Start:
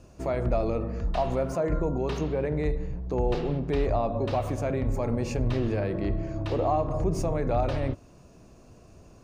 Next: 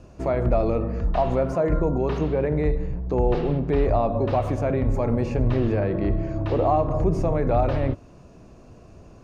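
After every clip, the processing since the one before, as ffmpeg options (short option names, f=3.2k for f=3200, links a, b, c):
-filter_complex "[0:a]lowpass=f=3.2k:p=1,acrossover=split=2400[a][b];[b]alimiter=level_in=22dB:limit=-24dB:level=0:latency=1:release=58,volume=-22dB[c];[a][c]amix=inputs=2:normalize=0,volume=5dB"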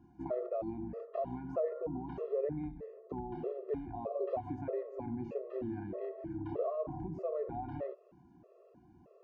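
-af "acompressor=threshold=-22dB:ratio=6,bandpass=f=460:t=q:w=0.81:csg=0,afftfilt=real='re*gt(sin(2*PI*1.6*pts/sr)*(1-2*mod(floor(b*sr/1024/350),2)),0)':imag='im*gt(sin(2*PI*1.6*pts/sr)*(1-2*mod(floor(b*sr/1024/350),2)),0)':win_size=1024:overlap=0.75,volume=-5.5dB"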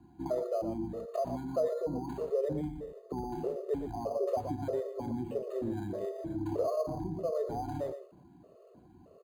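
-filter_complex "[0:a]aecho=1:1:118:0.316,acrossover=split=240|1000[a][b][c];[c]acrusher=samples=8:mix=1:aa=0.000001[d];[a][b][d]amix=inputs=3:normalize=0,volume=3.5dB" -ar 48000 -c:a libopus -b:a 96k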